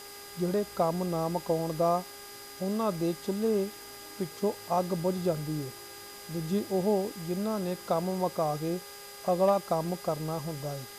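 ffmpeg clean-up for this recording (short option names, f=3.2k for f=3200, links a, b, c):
-af "bandreject=f=405.2:t=h:w=4,bandreject=f=810.4:t=h:w=4,bandreject=f=1.2156k:t=h:w=4,bandreject=f=1.6208k:t=h:w=4,bandreject=f=2.026k:t=h:w=4,bandreject=f=4.9k:w=30,afwtdn=0.0045"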